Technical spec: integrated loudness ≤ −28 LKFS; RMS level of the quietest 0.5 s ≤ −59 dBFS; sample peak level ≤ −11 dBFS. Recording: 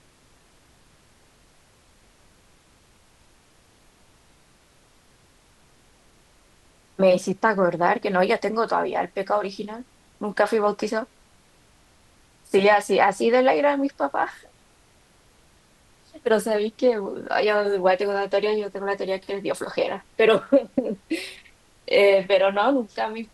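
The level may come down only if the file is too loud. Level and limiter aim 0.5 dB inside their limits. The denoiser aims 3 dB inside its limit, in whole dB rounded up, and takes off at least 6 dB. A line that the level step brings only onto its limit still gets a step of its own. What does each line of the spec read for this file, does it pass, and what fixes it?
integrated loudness −22.5 LKFS: out of spec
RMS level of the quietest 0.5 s −57 dBFS: out of spec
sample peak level −6.0 dBFS: out of spec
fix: level −6 dB

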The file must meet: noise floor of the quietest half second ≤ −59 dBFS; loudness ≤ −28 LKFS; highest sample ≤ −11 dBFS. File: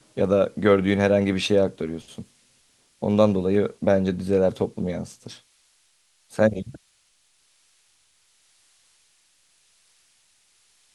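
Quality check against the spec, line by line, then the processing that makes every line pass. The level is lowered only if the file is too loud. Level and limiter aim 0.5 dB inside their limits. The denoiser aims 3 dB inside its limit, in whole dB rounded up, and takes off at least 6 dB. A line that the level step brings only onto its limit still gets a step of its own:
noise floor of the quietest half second −64 dBFS: in spec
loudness −22.5 LKFS: out of spec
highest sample −4.5 dBFS: out of spec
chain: level −6 dB
brickwall limiter −11.5 dBFS

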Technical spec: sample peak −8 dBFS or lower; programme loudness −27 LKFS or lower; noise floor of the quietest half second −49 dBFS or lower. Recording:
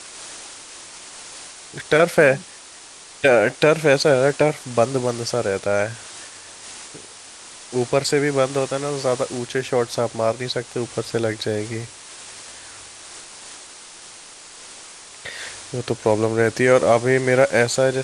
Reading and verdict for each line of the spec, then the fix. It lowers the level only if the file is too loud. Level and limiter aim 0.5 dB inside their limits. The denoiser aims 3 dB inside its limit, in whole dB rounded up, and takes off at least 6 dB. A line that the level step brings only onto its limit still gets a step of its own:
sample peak −3.0 dBFS: out of spec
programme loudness −20.0 LKFS: out of spec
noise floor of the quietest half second −42 dBFS: out of spec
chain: level −7.5 dB

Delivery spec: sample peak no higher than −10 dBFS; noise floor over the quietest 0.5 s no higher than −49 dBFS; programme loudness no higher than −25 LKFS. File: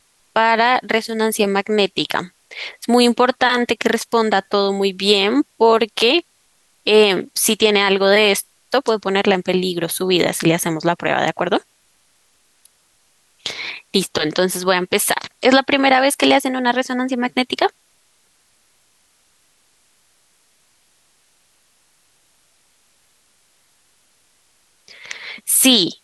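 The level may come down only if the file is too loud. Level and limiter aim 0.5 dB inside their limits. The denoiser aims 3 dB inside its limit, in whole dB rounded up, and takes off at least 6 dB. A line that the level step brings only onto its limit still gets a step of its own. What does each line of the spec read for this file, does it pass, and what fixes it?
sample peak −2.0 dBFS: out of spec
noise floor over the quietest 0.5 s −59 dBFS: in spec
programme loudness −16.5 LKFS: out of spec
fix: level −9 dB

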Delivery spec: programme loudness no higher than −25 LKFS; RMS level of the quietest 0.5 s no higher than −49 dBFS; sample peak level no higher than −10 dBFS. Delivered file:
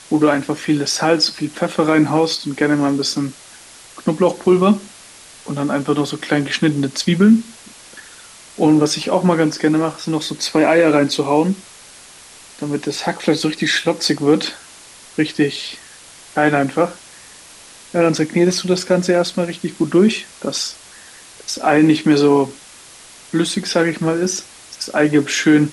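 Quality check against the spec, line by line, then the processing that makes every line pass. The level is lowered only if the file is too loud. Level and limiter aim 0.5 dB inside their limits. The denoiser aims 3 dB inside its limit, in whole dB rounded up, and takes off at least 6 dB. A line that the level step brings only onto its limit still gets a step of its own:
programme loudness −17.0 LKFS: out of spec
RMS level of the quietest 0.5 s −42 dBFS: out of spec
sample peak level −3.5 dBFS: out of spec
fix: level −8.5 dB

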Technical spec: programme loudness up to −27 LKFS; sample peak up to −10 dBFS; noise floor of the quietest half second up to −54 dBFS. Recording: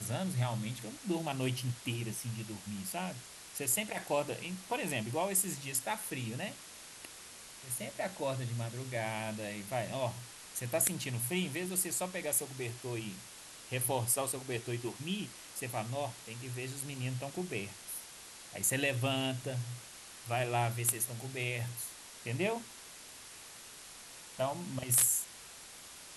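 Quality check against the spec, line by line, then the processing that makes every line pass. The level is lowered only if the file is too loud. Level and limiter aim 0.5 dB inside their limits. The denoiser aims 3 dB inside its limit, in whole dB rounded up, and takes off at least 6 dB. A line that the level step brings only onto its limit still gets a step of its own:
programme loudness −35.5 LKFS: in spec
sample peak −14.0 dBFS: in spec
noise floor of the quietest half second −51 dBFS: out of spec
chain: broadband denoise 6 dB, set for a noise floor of −51 dBFS

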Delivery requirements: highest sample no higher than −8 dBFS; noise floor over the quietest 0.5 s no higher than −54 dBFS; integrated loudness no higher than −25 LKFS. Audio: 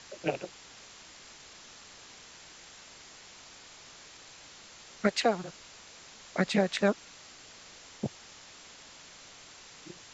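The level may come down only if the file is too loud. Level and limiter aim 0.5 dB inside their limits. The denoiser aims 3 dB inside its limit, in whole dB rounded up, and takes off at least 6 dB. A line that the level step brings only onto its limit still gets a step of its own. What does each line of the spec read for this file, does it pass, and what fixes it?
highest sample −11.0 dBFS: in spec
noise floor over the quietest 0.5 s −52 dBFS: out of spec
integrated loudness −31.5 LKFS: in spec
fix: broadband denoise 6 dB, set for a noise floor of −52 dBFS

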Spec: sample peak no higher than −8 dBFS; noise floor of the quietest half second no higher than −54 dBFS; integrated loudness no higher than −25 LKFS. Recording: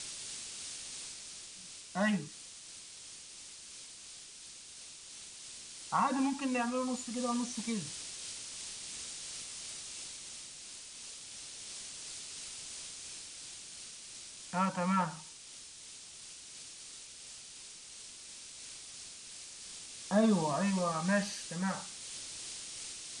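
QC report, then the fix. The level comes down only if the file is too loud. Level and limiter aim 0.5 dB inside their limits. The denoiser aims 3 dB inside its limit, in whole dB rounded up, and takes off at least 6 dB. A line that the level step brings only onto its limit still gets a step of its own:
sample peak −17.5 dBFS: in spec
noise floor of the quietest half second −51 dBFS: out of spec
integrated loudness −38.0 LKFS: in spec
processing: broadband denoise 6 dB, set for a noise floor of −51 dBFS

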